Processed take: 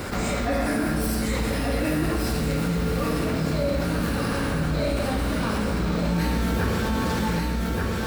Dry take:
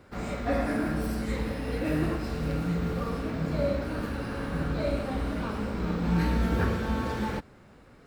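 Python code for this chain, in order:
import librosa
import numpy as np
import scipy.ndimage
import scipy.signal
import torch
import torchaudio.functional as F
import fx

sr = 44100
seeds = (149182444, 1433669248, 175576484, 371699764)

y = fx.high_shelf(x, sr, hz=4100.0, db=11.0)
y = y + 10.0 ** (-7.0 / 20.0) * np.pad(y, (int(1182 * sr / 1000.0), 0))[:len(y)]
y = fx.env_flatten(y, sr, amount_pct=70)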